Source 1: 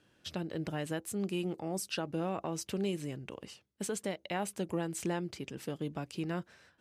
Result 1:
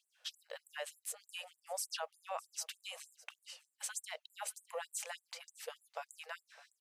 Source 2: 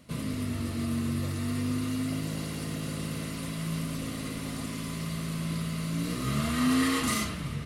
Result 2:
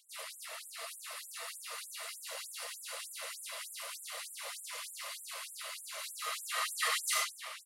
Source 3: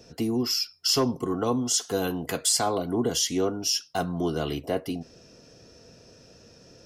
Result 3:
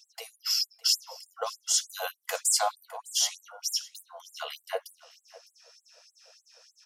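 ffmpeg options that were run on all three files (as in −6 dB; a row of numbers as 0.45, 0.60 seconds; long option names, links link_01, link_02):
-af "aecho=1:1:608:0.0944,afftfilt=real='re*gte(b*sr/1024,450*pow(7400/450,0.5+0.5*sin(2*PI*3.3*pts/sr)))':imag='im*gte(b*sr/1024,450*pow(7400/450,0.5+0.5*sin(2*PI*3.3*pts/sr)))':win_size=1024:overlap=0.75"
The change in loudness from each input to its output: −7.5, −7.5, −2.5 LU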